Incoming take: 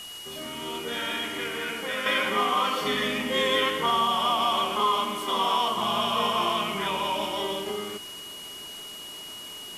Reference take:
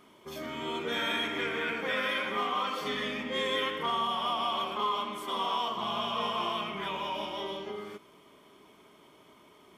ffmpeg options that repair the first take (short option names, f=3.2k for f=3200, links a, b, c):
-af "bandreject=f=2.9k:w=30,afwtdn=0.0063,asetnsamples=n=441:p=0,asendcmd='2.06 volume volume -6.5dB',volume=0dB"